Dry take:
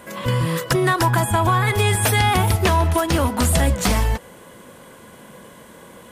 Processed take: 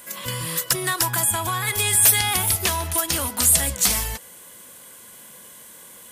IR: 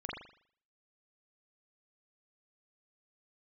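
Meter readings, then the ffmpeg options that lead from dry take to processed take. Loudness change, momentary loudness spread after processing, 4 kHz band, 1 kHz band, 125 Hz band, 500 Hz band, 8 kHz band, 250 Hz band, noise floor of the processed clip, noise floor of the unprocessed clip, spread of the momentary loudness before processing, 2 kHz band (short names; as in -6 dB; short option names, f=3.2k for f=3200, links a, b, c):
-0.5 dB, 11 LU, +1.5 dB, -8.0 dB, -12.0 dB, -10.5 dB, +8.5 dB, -11.5 dB, -45 dBFS, -44 dBFS, 5 LU, -3.5 dB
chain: -af "crystalizer=i=8.5:c=0,volume=-12dB"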